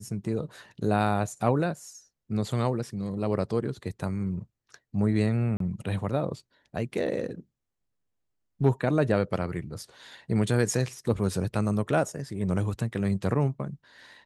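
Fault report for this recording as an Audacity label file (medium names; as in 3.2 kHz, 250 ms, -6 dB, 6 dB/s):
5.570000	5.600000	dropout 33 ms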